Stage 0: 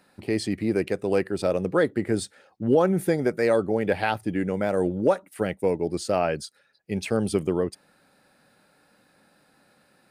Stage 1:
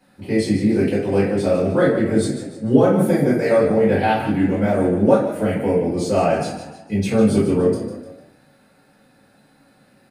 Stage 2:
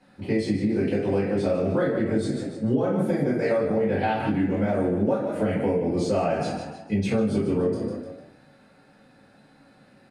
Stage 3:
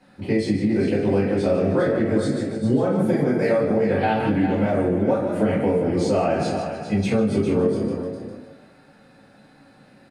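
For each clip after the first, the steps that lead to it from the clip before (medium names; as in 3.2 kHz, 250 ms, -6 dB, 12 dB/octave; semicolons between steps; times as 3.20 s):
frequency-shifting echo 150 ms, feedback 42%, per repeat +33 Hz, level -10 dB; reverberation RT60 0.55 s, pre-delay 3 ms, DRR -9.5 dB; trim -7.5 dB
compression, threshold -20 dBFS, peak gain reduction 12 dB; distance through air 56 m
delay 404 ms -9 dB; trim +3 dB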